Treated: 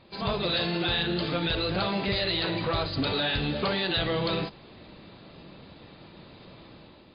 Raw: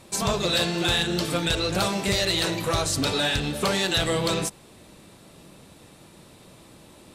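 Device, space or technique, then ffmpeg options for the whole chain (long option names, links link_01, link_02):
low-bitrate web radio: -af "dynaudnorm=framelen=180:gausssize=5:maxgain=7dB,alimiter=limit=-14.5dB:level=0:latency=1:release=64,volume=-5dB" -ar 11025 -c:a libmp3lame -b:a 32k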